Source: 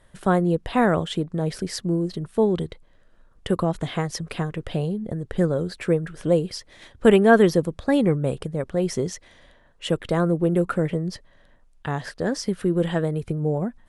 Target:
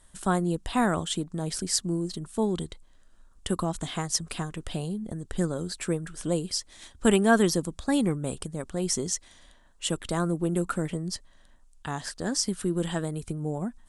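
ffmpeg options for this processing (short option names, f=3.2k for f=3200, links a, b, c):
-af "equalizer=f=125:t=o:w=1:g=-9,equalizer=f=500:t=o:w=1:g=-10,equalizer=f=2k:t=o:w=1:g=-6,equalizer=f=8k:t=o:w=1:g=11"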